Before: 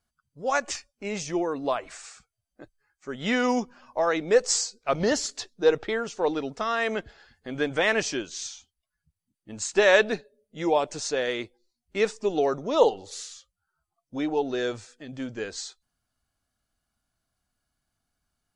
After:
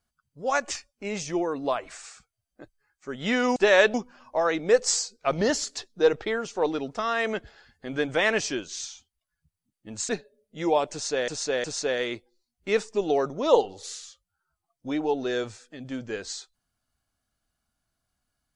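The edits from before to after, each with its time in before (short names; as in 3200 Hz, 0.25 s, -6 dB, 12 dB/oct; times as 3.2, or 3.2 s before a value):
9.71–10.09 move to 3.56
10.92–11.28 loop, 3 plays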